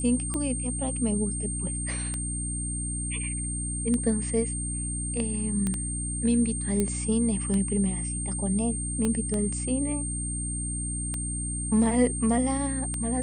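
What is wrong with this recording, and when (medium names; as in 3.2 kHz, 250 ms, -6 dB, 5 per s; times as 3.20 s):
hum 60 Hz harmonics 5 -33 dBFS
tick 33 1/3 rpm -17 dBFS
whine 8.7 kHz -32 dBFS
5.67 s: pop -16 dBFS
6.80 s: pop -13 dBFS
9.05 s: pop -15 dBFS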